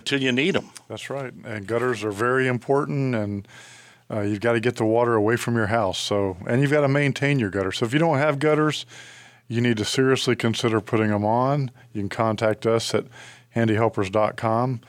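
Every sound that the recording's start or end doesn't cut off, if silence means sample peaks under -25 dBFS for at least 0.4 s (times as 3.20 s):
4.11–8.81 s
9.51–13.01 s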